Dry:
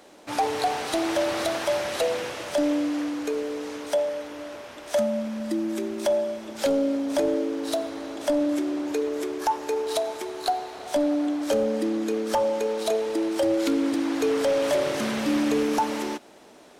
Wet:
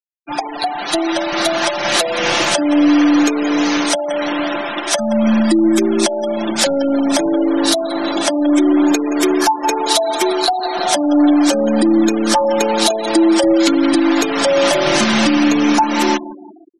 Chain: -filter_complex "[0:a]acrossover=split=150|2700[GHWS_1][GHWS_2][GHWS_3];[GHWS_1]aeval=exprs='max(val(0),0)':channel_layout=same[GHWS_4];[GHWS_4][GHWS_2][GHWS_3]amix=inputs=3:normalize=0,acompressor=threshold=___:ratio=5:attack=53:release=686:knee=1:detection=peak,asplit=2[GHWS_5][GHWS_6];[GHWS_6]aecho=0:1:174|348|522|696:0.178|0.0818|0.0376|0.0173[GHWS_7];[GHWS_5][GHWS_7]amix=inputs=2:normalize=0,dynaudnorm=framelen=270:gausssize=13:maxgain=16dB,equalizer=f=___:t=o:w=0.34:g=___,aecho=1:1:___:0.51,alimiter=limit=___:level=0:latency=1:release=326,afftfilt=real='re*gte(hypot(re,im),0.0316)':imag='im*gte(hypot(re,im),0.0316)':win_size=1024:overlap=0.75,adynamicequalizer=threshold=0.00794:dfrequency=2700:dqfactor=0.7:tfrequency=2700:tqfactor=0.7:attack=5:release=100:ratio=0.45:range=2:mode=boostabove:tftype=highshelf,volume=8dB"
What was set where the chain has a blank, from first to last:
-26dB, 480, -10.5, 5.8, -12.5dB